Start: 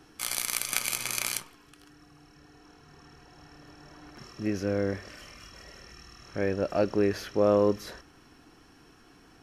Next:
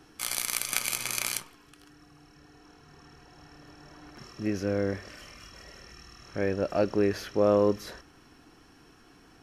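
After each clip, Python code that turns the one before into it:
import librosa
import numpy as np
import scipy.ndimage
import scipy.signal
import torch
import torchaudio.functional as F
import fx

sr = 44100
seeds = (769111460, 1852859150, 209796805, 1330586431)

y = x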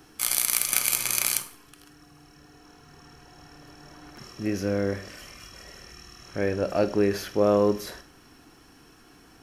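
y = fx.high_shelf(x, sr, hz=9800.0, db=11.0)
y = np.clip(y, -10.0 ** (-4.0 / 20.0), 10.0 ** (-4.0 / 20.0))
y = fx.rev_schroeder(y, sr, rt60_s=0.41, comb_ms=32, drr_db=12.5)
y = F.gain(torch.from_numpy(y), 2.0).numpy()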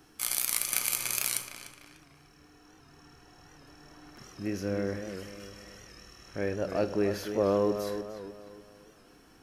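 y = fx.echo_filtered(x, sr, ms=298, feedback_pct=42, hz=3800.0, wet_db=-8.5)
y = fx.record_warp(y, sr, rpm=78.0, depth_cents=100.0)
y = F.gain(torch.from_numpy(y), -5.5).numpy()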